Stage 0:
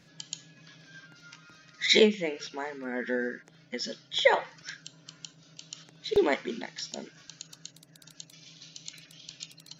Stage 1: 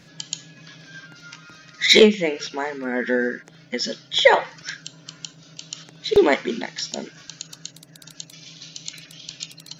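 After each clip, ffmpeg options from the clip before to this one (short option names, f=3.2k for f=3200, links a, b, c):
-af "acontrast=64,volume=2.5dB"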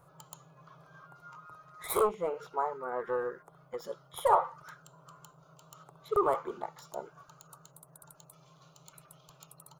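-af "asoftclip=type=tanh:threshold=-14.5dB,firequalizer=gain_entry='entry(140,0);entry(230,-21);entry(390,-1);entry(1200,12);entry(1700,-16);entry(5700,-22);entry(8800,5)':delay=0.05:min_phase=1,volume=-7.5dB"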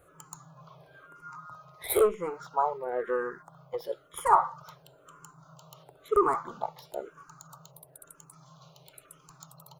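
-filter_complex "[0:a]asplit=2[a][b];[b]afreqshift=-1[c];[a][c]amix=inputs=2:normalize=1,volume=6dB"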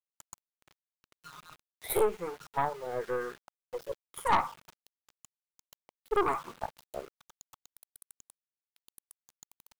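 -af "aeval=exprs='(tanh(7.94*val(0)+0.65)-tanh(0.65))/7.94':c=same,aeval=exprs='val(0)*gte(abs(val(0)),0.00501)':c=same"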